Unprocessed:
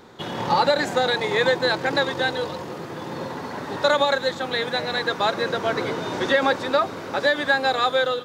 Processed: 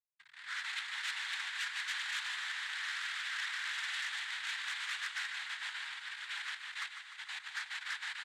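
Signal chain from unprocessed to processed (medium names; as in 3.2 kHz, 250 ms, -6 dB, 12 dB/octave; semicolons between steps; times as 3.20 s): Doppler pass-by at 3.01 s, 16 m/s, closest 2.5 m; Schmitt trigger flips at -49 dBFS; distance through air 360 m; reverberation RT60 5.2 s, pre-delay 75 ms, DRR 12 dB; noise-vocoded speech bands 6; inverse Chebyshev high-pass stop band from 630 Hz, stop band 50 dB; feedback delay 150 ms, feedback 60%, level -9 dB; level rider gain up to 10 dB; transformer saturation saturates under 3.8 kHz; trim +5 dB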